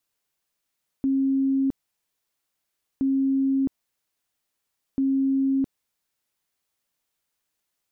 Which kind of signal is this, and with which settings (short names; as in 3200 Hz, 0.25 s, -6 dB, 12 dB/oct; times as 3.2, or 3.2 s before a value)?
tone bursts 270 Hz, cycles 179, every 1.97 s, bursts 3, -19 dBFS